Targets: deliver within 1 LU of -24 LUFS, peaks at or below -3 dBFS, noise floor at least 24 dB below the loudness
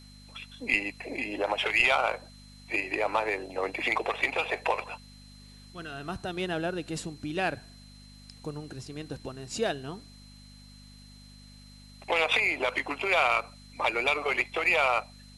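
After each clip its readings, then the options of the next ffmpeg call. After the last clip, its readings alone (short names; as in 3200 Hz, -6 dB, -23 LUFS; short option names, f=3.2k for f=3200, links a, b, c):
hum 50 Hz; harmonics up to 250 Hz; hum level -49 dBFS; steady tone 4100 Hz; tone level -55 dBFS; loudness -28.0 LUFS; peak -10.0 dBFS; loudness target -24.0 LUFS
-> -af "bandreject=f=50:t=h:w=4,bandreject=f=100:t=h:w=4,bandreject=f=150:t=h:w=4,bandreject=f=200:t=h:w=4,bandreject=f=250:t=h:w=4"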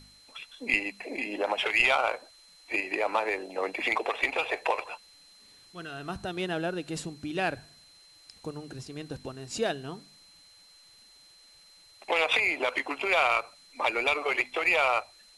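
hum none; steady tone 4100 Hz; tone level -55 dBFS
-> -af "bandreject=f=4.1k:w=30"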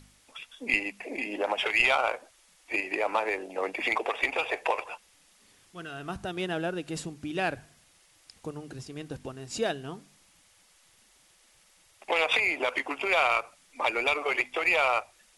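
steady tone none; loudness -28.0 LUFS; peak -10.0 dBFS; loudness target -24.0 LUFS
-> -af "volume=4dB"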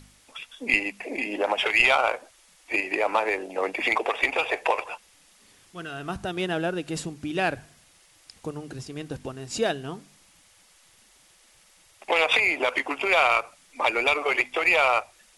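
loudness -24.0 LUFS; peak -6.0 dBFS; noise floor -58 dBFS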